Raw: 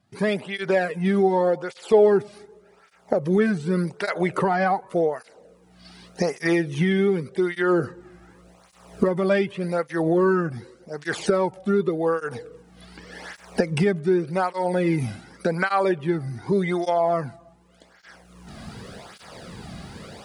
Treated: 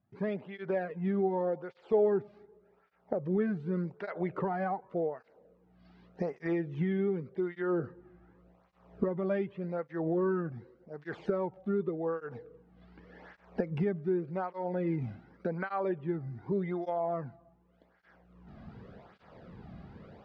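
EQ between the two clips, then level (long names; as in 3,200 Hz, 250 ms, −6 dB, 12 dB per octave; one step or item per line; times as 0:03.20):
head-to-tape spacing loss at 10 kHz 42 dB
−8.5 dB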